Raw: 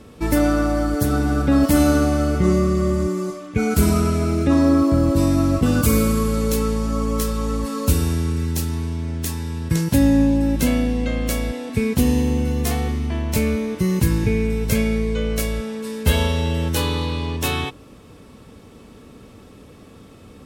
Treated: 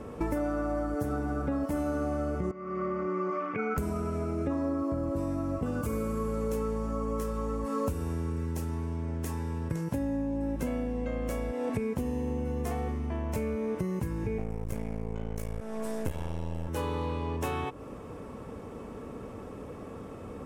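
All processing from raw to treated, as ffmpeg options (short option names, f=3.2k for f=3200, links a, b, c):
-filter_complex "[0:a]asettb=1/sr,asplit=3[a][b][c];[a]atrim=end=2.514[d];[b]atrim=start=2.51:end=3.78,asetpts=PTS-STARTPTS,afade=t=in:d=0.004:c=qsin,afade=t=out:st=1.266:d=0.004:c=qsin,acompressor=threshold=-25dB:ratio=6:attack=3.2:release=140:knee=1:detection=peak,highpass=210,equalizer=f=310:t=q:w=4:g=-4,equalizer=f=630:t=q:w=4:g=-5,equalizer=f=1.3k:t=q:w=4:g=9,equalizer=f=2.2k:t=q:w=4:g=8,equalizer=f=3.9k:t=q:w=4:g=-10,lowpass=f=4.5k:w=0.5412,lowpass=f=4.5k:w=1.3066[e];[c]atrim=start=3.776[f];[d][e]acrossfade=d=0.004:c1=hsin:c2=qsin[g];[g][f]acrossfade=d=0.004:c1=qsin:c2=hsin,asettb=1/sr,asplit=3[h][i][j];[h]atrim=end=14.384[k];[i]atrim=start=14.38:end=16.68,asetpts=PTS-STARTPTS,afade=t=in:d=0.004:c=qsin,afade=t=out:st=2.296:d=0.004:c=qsin,bass=f=250:g=7,treble=f=4k:g=7,aeval=exprs='max(val(0),0)':c=same[l];[j]atrim=start=16.676[m];[k][l]acrossfade=d=0.004:c1=hsin:c2=qsin[n];[n][m]acrossfade=d=0.004:c1=qsin:c2=hsin,highshelf=f=9.1k:g=-10,acompressor=threshold=-30dB:ratio=10,equalizer=f=500:t=o:w=1:g=5,equalizer=f=1k:t=o:w=1:g=5,equalizer=f=4k:t=o:w=1:g=-11"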